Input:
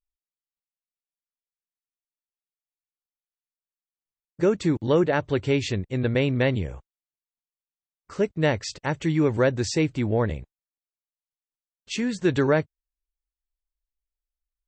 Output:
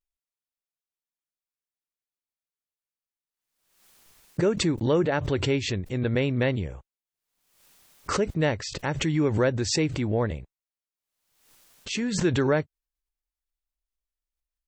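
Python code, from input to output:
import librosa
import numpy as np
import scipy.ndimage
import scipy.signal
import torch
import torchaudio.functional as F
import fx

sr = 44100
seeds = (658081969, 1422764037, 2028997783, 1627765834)

y = fx.vibrato(x, sr, rate_hz=0.3, depth_cents=28.0)
y = fx.pre_swell(y, sr, db_per_s=67.0)
y = F.gain(torch.from_numpy(y), -2.5).numpy()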